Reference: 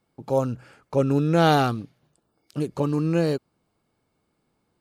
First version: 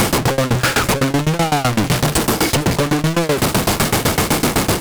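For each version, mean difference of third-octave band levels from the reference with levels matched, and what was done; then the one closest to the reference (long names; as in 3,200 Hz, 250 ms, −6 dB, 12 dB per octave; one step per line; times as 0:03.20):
16.0 dB: linear delta modulator 64 kbit/s, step −21.5 dBFS
in parallel at −2 dB: compressor whose output falls as the input rises −27 dBFS
on the sum: leveller curve on the samples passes 5
shaped tremolo saw down 7.9 Hz, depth 95%
level −3.5 dB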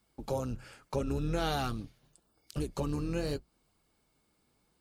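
7.0 dB: sub-octave generator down 2 octaves, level −2 dB
high-shelf EQ 2,500 Hz +10 dB
downward compressor 3 to 1, threshold −28 dBFS, peak gain reduction 12 dB
flanger 0.8 Hz, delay 0.6 ms, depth 9.8 ms, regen −44%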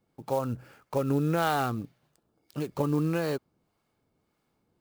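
4.5 dB: dynamic equaliser 1,200 Hz, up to +6 dB, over −35 dBFS, Q 0.76
downward compressor 6 to 1, threshold −21 dBFS, peak gain reduction 10.5 dB
two-band tremolo in antiphase 1.7 Hz, depth 50%, crossover 640 Hz
converter with an unsteady clock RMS 0.021 ms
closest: third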